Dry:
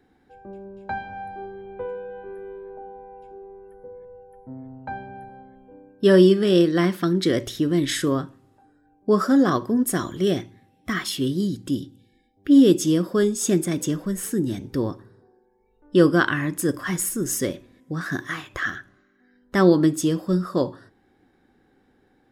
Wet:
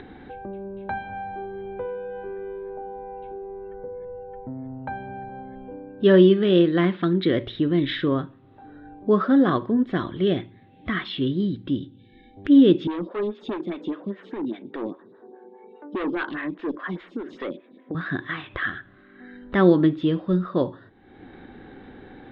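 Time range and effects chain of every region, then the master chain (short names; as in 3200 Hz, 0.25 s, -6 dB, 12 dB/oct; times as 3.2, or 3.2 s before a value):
12.87–17.95 HPF 200 Hz 24 dB/oct + hard clip -21.5 dBFS + photocell phaser 4.9 Hz
whole clip: Chebyshev low-pass 3800 Hz, order 5; upward compressor, threshold -28 dBFS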